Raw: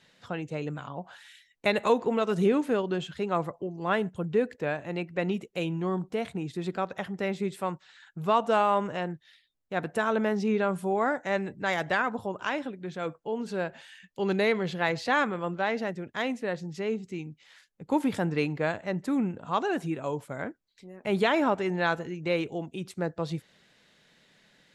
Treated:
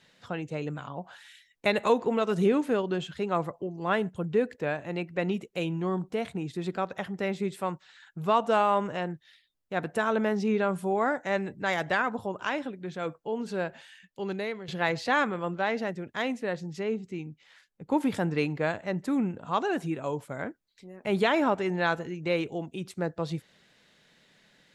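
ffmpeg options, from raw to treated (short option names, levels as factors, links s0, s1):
-filter_complex "[0:a]asettb=1/sr,asplit=3[s0][s1][s2];[s0]atrim=end=16.834[s3];[s1]atrim=start=16.83:end=18.01,asetpts=PTS-STARTPTS,afade=t=in:d=0.004:c=qsin,afade=t=out:st=1.176:d=0.004:c=qsin,highshelf=f=3900:g=-6[s4];[s2]atrim=start=18.006[s5];[s3][s4]acrossfade=d=0.004:c1=hsin:c2=qsin[s6];[s6][s5]acrossfade=d=0.004:c1=qsin:c2=hsin,asplit=2[s7][s8];[s7]atrim=end=14.68,asetpts=PTS-STARTPTS,afade=t=out:st=13.68:d=1:silence=0.211349[s9];[s8]atrim=start=14.68,asetpts=PTS-STARTPTS,afade=t=in:d=0.004:c=hsin:silence=0.211349[s10];[s9][s10]concat=n=2:v=0:a=1"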